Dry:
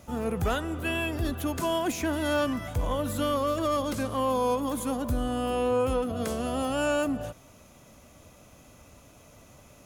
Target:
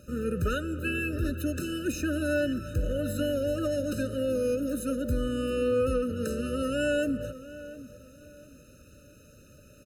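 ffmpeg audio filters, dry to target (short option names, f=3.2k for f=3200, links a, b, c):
-filter_complex "[0:a]asplit=2[a][b];[b]adelay=706,lowpass=f=2k:p=1,volume=-15.5dB,asplit=2[c][d];[d]adelay=706,lowpass=f=2k:p=1,volume=0.34,asplit=2[e][f];[f]adelay=706,lowpass=f=2k:p=1,volume=0.34[g];[a][c][e][g]amix=inputs=4:normalize=0,afftfilt=real='re*eq(mod(floor(b*sr/1024/610),2),0)':imag='im*eq(mod(floor(b*sr/1024/610),2),0)':win_size=1024:overlap=0.75"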